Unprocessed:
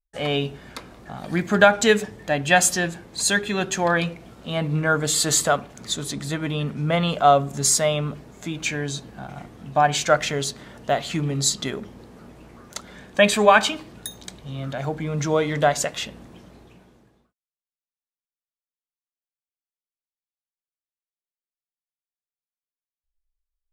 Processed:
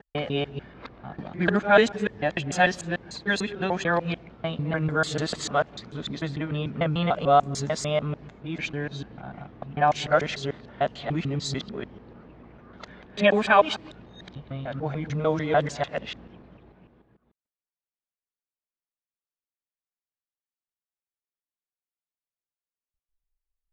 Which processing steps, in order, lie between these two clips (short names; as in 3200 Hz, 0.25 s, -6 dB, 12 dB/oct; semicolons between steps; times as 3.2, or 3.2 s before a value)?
local time reversal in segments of 0.148 s; low-pass opened by the level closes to 2900 Hz, open at -15.5 dBFS; air absorption 160 m; gain -2.5 dB